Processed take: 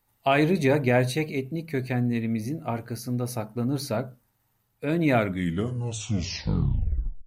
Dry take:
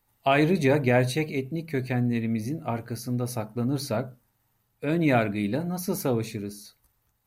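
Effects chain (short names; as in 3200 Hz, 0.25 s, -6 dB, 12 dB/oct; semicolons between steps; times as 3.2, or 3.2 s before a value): tape stop at the end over 2.13 s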